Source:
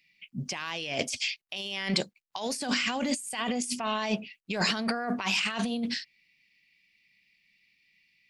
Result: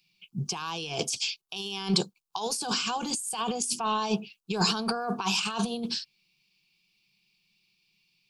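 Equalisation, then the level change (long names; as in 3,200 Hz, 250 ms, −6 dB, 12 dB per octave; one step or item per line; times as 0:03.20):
phaser with its sweep stopped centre 390 Hz, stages 8
+5.0 dB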